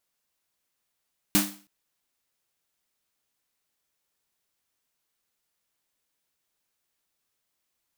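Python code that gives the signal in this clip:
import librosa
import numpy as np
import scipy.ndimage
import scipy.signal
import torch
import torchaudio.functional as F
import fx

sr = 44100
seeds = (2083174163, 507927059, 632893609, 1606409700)

y = fx.drum_snare(sr, seeds[0], length_s=0.32, hz=200.0, second_hz=300.0, noise_db=1.5, noise_from_hz=510.0, decay_s=0.38, noise_decay_s=0.38)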